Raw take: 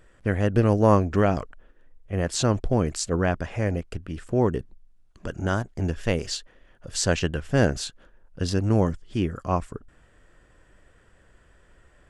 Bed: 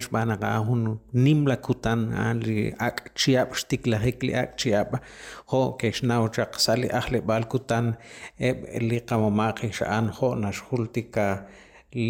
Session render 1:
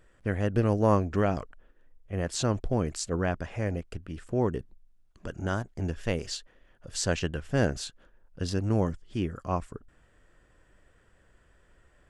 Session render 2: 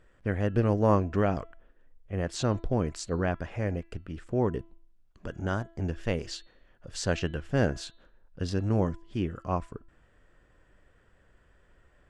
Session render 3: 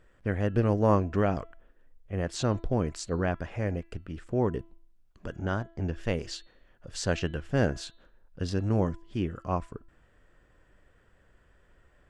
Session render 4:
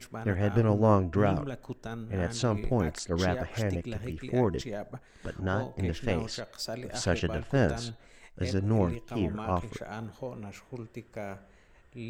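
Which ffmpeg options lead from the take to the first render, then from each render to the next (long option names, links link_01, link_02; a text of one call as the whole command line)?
ffmpeg -i in.wav -af "volume=-5dB" out.wav
ffmpeg -i in.wav -af "highshelf=frequency=7500:gain=-12,bandreject=frequency=333.8:width_type=h:width=4,bandreject=frequency=667.6:width_type=h:width=4,bandreject=frequency=1001.4:width_type=h:width=4,bandreject=frequency=1335.2:width_type=h:width=4,bandreject=frequency=1669:width_type=h:width=4,bandreject=frequency=2002.8:width_type=h:width=4,bandreject=frequency=2336.6:width_type=h:width=4,bandreject=frequency=2670.4:width_type=h:width=4,bandreject=frequency=3004.2:width_type=h:width=4,bandreject=frequency=3338:width_type=h:width=4,bandreject=frequency=3671.8:width_type=h:width=4,bandreject=frequency=4005.6:width_type=h:width=4,bandreject=frequency=4339.4:width_type=h:width=4" out.wav
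ffmpeg -i in.wav -filter_complex "[0:a]asettb=1/sr,asplit=3[link_01][link_02][link_03];[link_01]atrim=end=5.374[link_04];[link_02]atrim=start=5.37:end=5.94,asetpts=PTS-STARTPTS,afade=type=in:duration=0.004:curve=qsin,afade=type=out:start_time=0.566:duration=0.004:curve=qsin,lowpass=5500[link_05];[link_03]atrim=start=5.936[link_06];[link_04][link_05]acrossfade=duration=0.004:curve1=hsin:curve2=qsin[link_07];[link_07][link_06]acrossfade=duration=0.004:curve1=qsin:curve2=hsin" out.wav
ffmpeg -i in.wav -i bed.wav -filter_complex "[1:a]volume=-14.5dB[link_01];[0:a][link_01]amix=inputs=2:normalize=0" out.wav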